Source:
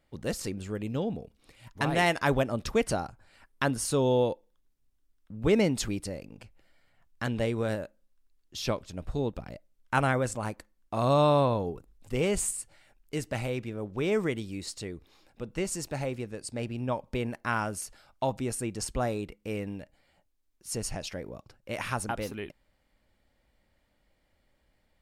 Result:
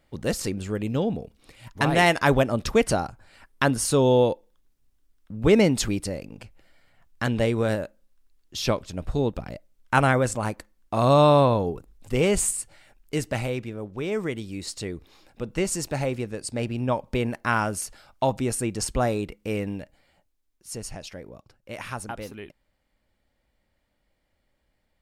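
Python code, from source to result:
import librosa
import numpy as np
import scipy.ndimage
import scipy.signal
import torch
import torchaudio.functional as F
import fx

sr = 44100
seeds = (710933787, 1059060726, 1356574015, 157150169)

y = fx.gain(x, sr, db=fx.line((13.23, 6.0), (14.09, -1.0), (14.9, 6.0), (19.75, 6.0), (20.82, -2.0)))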